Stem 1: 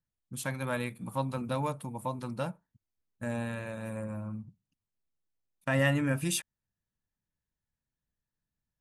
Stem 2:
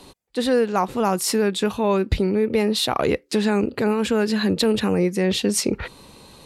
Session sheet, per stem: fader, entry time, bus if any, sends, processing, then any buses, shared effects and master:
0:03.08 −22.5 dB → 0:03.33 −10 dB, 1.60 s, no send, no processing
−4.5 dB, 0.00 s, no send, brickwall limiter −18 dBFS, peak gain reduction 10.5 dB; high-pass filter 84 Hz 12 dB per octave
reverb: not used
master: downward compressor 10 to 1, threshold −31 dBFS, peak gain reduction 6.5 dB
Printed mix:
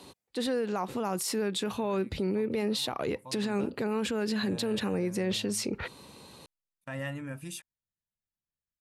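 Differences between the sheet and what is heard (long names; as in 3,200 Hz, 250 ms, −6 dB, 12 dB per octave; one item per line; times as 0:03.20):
stem 1: entry 1.60 s → 1.20 s
master: missing downward compressor 10 to 1, threshold −31 dBFS, peak gain reduction 6.5 dB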